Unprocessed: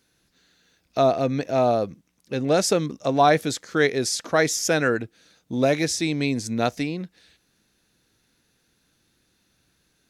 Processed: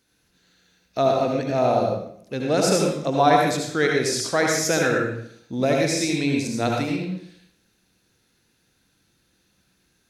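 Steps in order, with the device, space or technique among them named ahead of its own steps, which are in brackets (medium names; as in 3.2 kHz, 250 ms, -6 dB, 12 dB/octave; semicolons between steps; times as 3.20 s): bathroom (reverberation RT60 0.65 s, pre-delay 66 ms, DRR -0.5 dB); trim -2 dB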